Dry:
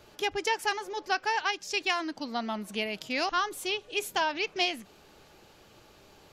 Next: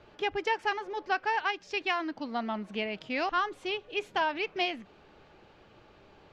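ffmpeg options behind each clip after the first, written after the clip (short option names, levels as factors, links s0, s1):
-af "lowpass=2800"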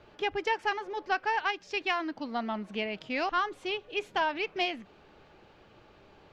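-af "aeval=exprs='0.158*(cos(1*acos(clip(val(0)/0.158,-1,1)))-cos(1*PI/2))+0.00708*(cos(2*acos(clip(val(0)/0.158,-1,1)))-cos(2*PI/2))':c=same"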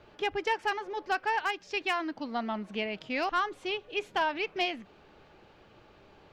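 -af "asoftclip=type=hard:threshold=0.0944"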